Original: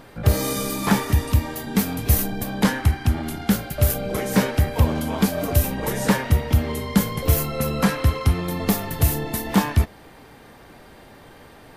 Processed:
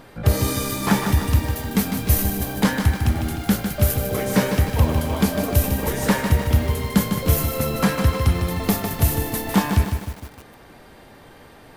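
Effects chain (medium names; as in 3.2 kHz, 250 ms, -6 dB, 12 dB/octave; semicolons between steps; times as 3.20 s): bit-crushed delay 152 ms, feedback 55%, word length 6-bit, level -6.5 dB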